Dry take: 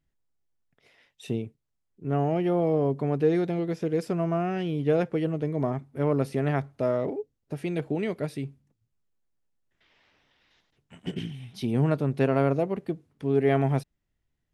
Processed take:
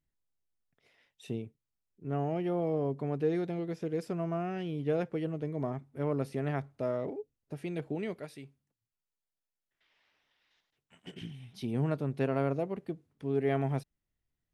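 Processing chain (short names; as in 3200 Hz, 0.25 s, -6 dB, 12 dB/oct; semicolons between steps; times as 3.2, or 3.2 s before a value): 8.19–11.22 low shelf 430 Hz -10.5 dB; gain -7 dB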